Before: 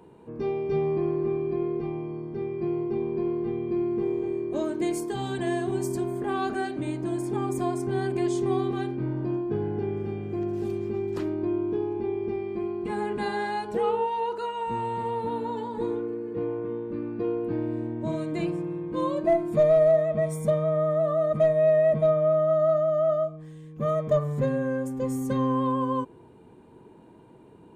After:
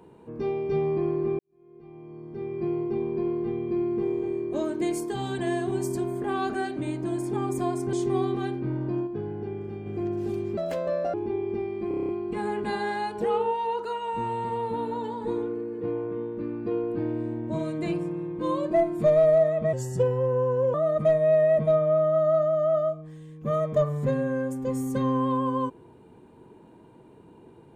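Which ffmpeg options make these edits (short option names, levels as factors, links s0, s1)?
-filter_complex "[0:a]asplit=16[s0][s1][s2][s3][s4][s5][s6][s7][s8][s9][s10][s11][s12][s13][s14][s15];[s0]atrim=end=1.39,asetpts=PTS-STARTPTS,afade=t=out:st=1.386:d=0.004:c=hsin[s16];[s1]atrim=start=1.39:end=7.932,asetpts=PTS-STARTPTS,afade=t=in:d=1.2:c=qua[s17];[s2]atrim=start=8.288:end=9.432[s18];[s3]atrim=start=9.428:end=10.222,asetpts=PTS-STARTPTS,volume=0.596[s19];[s4]atrim=start=10.218:end=10.934[s20];[s5]atrim=start=10.93:end=11.88,asetpts=PTS-STARTPTS,asetrate=73647,aresample=44100[s21];[s6]atrim=start=11.876:end=12.652[s22];[s7]atrim=start=12.618:end=12.652[s23];[s8]atrim=start=12.618:end=12.652[s24];[s9]atrim=start=12.618:end=12.652[s25];[s10]atrim=start=12.618:end=12.652[s26];[s11]atrim=start=12.618:end=12.652[s27];[s12]atrim=start=12.618:end=12.652[s28];[s13]atrim=start=12.618:end=20.264[s29];[s14]atrim=start=20.26:end=21.09,asetpts=PTS-STARTPTS,asetrate=36162,aresample=44100[s30];[s15]atrim=start=21.086[s31];[s16][s17]concat=n=2:v=0:a=1[s32];[s32][s18]acrossfade=d=0.004:c1=hsin:c2=hsin[s33];[s33][s19]acrossfade=d=0.004:c1=hsin:c2=hsin[s34];[s34][s20]acrossfade=d=0.004:c1=hsin:c2=hsin[s35];[s35][s21]acrossfade=d=0.004:c1=hsin:c2=hsin[s36];[s36][s22]acrossfade=d=0.004:c1=hsin:c2=hsin[s37];[s37][s23]acrossfade=d=0.004:c1=hsin:c2=hsin[s38];[s38][s24]acrossfade=d=0.004:c1=hsin:c2=hsin[s39];[s39][s25]acrossfade=d=0.004:c1=hsin:c2=hsin[s40];[s40][s26]acrossfade=d=0.004:c1=hsin:c2=hsin[s41];[s41][s27]acrossfade=d=0.004:c1=hsin:c2=hsin[s42];[s42][s28]acrossfade=d=0.004:c1=hsin:c2=hsin[s43];[s43][s29]acrossfade=d=0.004:c1=hsin:c2=hsin[s44];[s44][s30]acrossfade=d=0.004:c1=hsin:c2=hsin[s45];[s45][s31]acrossfade=d=0.004:c1=hsin:c2=hsin"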